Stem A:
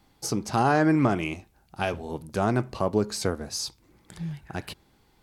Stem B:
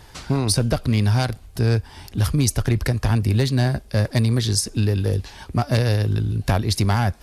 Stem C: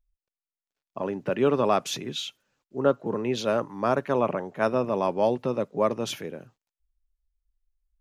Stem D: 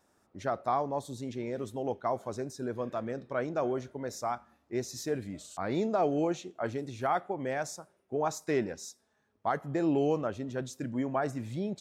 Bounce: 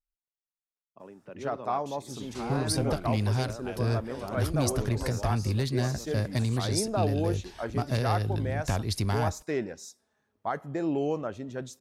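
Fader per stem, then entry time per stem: -14.5 dB, -9.0 dB, -18.0 dB, -1.0 dB; 1.85 s, 2.20 s, 0.00 s, 1.00 s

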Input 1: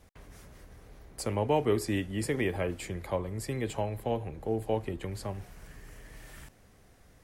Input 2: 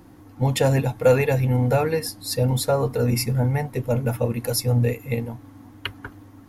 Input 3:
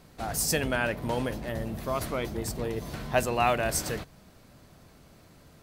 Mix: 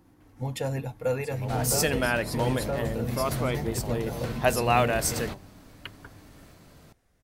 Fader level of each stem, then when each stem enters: -10.0 dB, -11.0 dB, +2.0 dB; 0.05 s, 0.00 s, 1.30 s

